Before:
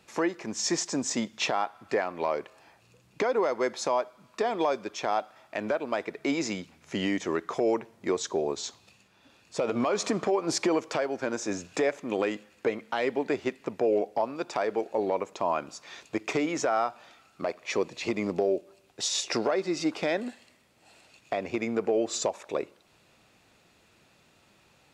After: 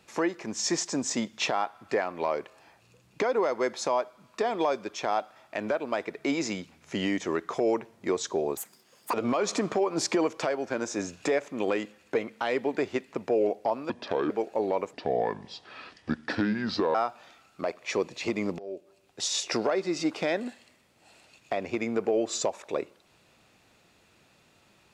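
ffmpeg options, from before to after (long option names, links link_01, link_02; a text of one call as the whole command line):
ffmpeg -i in.wav -filter_complex "[0:a]asplit=8[link_01][link_02][link_03][link_04][link_05][link_06][link_07][link_08];[link_01]atrim=end=8.574[link_09];[link_02]atrim=start=8.57:end=9.65,asetpts=PTS-STARTPTS,asetrate=84231,aresample=44100,atrim=end_sample=24936,asetpts=PTS-STARTPTS[link_10];[link_03]atrim=start=9.646:end=14.414[link_11];[link_04]atrim=start=14.41:end=14.69,asetpts=PTS-STARTPTS,asetrate=30429,aresample=44100[link_12];[link_05]atrim=start=14.686:end=15.324[link_13];[link_06]atrim=start=15.32:end=16.75,asetpts=PTS-STARTPTS,asetrate=31311,aresample=44100,atrim=end_sample=88821,asetpts=PTS-STARTPTS[link_14];[link_07]atrim=start=16.746:end=18.39,asetpts=PTS-STARTPTS,afade=type=out:start_time=1.64:duration=0.004:curve=hsin:silence=0.0749894[link_15];[link_08]atrim=start=18.39,asetpts=PTS-STARTPTS,afade=type=in:duration=0.88:curve=qsin:silence=0.0749894[link_16];[link_09][link_10]acrossfade=duration=0.004:curve1=hsin:curve2=hsin[link_17];[link_17][link_11]acrossfade=duration=0.004:curve1=hsin:curve2=hsin[link_18];[link_18][link_12]acrossfade=duration=0.004:curve1=hsin:curve2=hsin[link_19];[link_19][link_13]acrossfade=duration=0.004:curve1=hsin:curve2=hsin[link_20];[link_20][link_14]acrossfade=duration=0.004:curve1=hsin:curve2=hsin[link_21];[link_15][link_16]concat=n=2:v=0:a=1[link_22];[link_21][link_22]acrossfade=duration=0.004:curve1=hsin:curve2=hsin" out.wav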